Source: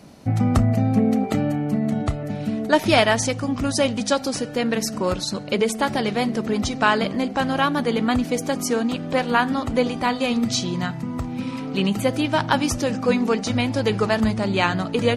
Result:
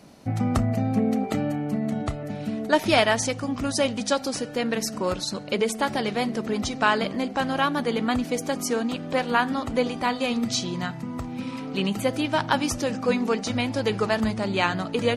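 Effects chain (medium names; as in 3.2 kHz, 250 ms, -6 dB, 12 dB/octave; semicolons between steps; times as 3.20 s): peaking EQ 75 Hz -4 dB 3 oct; trim -2.5 dB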